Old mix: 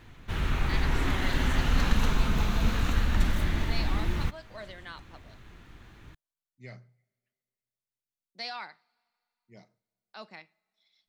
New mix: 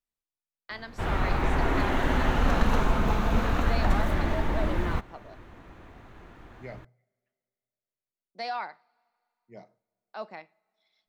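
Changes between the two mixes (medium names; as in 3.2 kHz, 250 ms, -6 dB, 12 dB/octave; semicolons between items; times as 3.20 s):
background: entry +0.70 s; master: add FFT filter 140 Hz 0 dB, 670 Hz +10 dB, 3.7 kHz -4 dB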